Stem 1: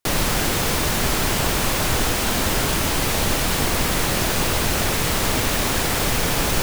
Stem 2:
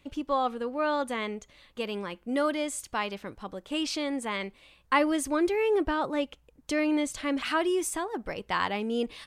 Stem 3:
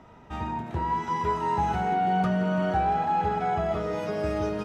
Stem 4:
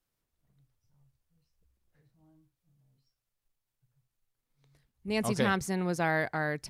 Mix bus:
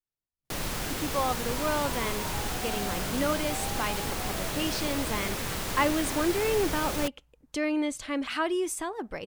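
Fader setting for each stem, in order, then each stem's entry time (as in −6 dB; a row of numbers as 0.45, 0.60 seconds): −12.0, −1.5, −15.0, −15.5 decibels; 0.45, 0.85, 0.75, 0.00 seconds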